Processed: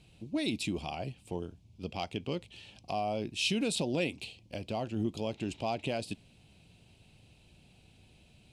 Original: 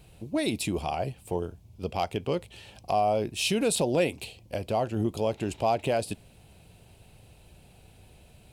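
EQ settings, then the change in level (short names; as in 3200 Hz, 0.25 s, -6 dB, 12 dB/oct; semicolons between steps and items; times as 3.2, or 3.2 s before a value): air absorption 71 m; low shelf 130 Hz -10.5 dB; band shelf 860 Hz -8.5 dB 2.6 oct; 0.0 dB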